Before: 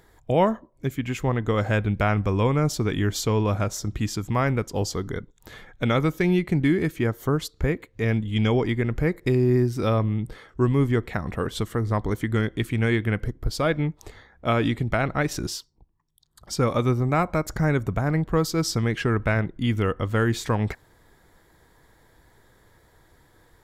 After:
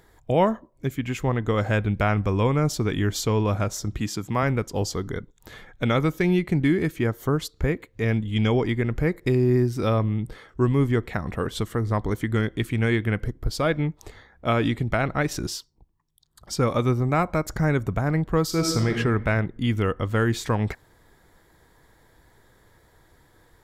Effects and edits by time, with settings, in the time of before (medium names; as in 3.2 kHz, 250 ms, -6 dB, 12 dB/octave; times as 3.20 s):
4.00–4.43 s: high-pass 120 Hz
18.45–18.96 s: reverb throw, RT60 1.2 s, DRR 3 dB